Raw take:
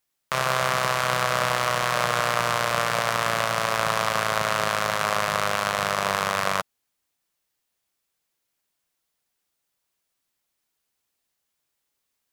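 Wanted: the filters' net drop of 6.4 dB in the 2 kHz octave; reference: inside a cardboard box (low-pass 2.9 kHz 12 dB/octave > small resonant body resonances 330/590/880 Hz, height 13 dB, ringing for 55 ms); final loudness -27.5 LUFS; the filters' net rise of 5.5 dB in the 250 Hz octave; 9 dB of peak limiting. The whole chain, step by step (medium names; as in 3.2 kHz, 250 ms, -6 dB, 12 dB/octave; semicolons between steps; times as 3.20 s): peaking EQ 250 Hz +8 dB; peaking EQ 2 kHz -8 dB; peak limiter -15 dBFS; low-pass 2.9 kHz 12 dB/octave; small resonant body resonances 330/590/880 Hz, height 13 dB, ringing for 55 ms; trim -0.5 dB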